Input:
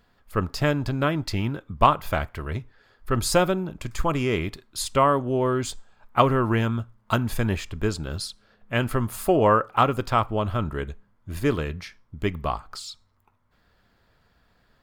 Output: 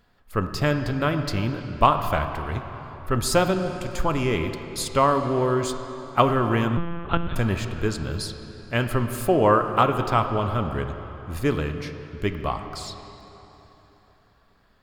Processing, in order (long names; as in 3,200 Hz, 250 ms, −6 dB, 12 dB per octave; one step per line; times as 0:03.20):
convolution reverb RT60 3.6 s, pre-delay 17 ms, DRR 7 dB
0:06.77–0:07.36: one-pitch LPC vocoder at 8 kHz 170 Hz